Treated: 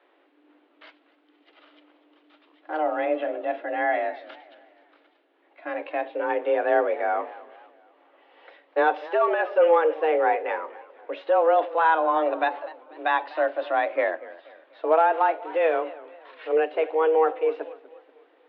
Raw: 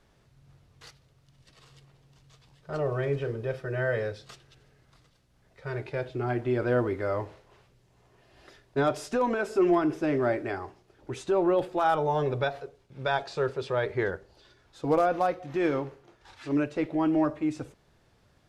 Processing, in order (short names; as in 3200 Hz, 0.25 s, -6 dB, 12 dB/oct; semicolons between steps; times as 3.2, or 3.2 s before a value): mistuned SSB +160 Hz 160–3200 Hz; warbling echo 0.243 s, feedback 43%, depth 160 cents, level -19 dB; gain +4.5 dB